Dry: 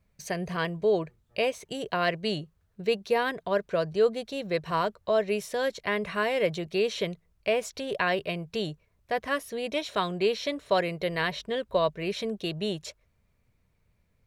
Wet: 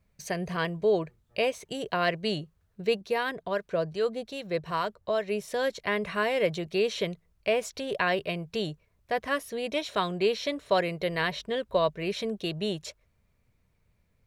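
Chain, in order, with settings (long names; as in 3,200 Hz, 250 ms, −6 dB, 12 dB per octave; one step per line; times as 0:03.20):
0:03.01–0:05.48: two-band tremolo in antiphase 2.5 Hz, depth 50%, crossover 910 Hz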